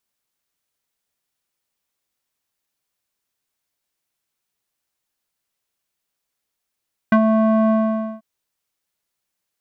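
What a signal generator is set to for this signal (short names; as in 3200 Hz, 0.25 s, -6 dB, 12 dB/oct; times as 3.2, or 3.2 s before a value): synth note square A3 12 dB/oct, low-pass 890 Hz, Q 2.6, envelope 1 oct, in 0.06 s, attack 3.7 ms, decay 0.08 s, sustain -4.5 dB, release 0.51 s, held 0.58 s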